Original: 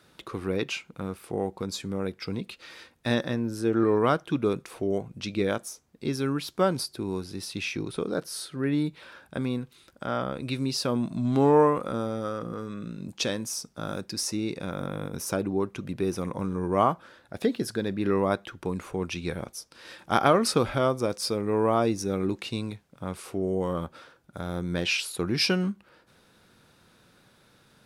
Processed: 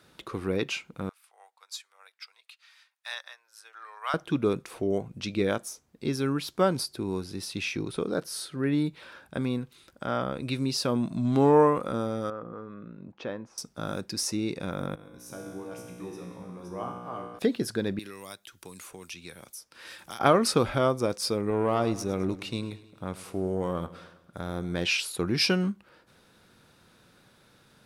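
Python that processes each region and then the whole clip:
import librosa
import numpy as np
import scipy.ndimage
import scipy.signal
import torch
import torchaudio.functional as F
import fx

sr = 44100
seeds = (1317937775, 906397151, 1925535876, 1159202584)

y = fx.chain(x, sr, fx.bessel_highpass(hz=1300.0, order=6),
    fx.upward_expand(threshold_db=-51.0, expansion=1.5), at=(1.09, 4.14))
y = fx.chain(y, sr, fx.lowpass(hz=1300.0, slope=12),
    fx.low_shelf(hz=430.0, db=-9.0), at=(12.3, 13.58))
y = fx.chain(y, sr, fx.reverse_delay(ms=291, wet_db=-2),
    fx.comb_fb(f0_hz=60.0, decay_s=1.4, harmonics='all', damping=0.0, mix_pct=90), at=(14.95, 17.39))
y = fx.chain(y, sr, fx.pre_emphasis(coefficient=0.9),
    fx.band_squash(depth_pct=100), at=(17.99, 20.2))
y = fx.chain(y, sr, fx.tube_stage(drive_db=17.0, bias=0.5),
    fx.echo_feedback(ms=105, feedback_pct=55, wet_db=-16.5), at=(21.5, 24.81))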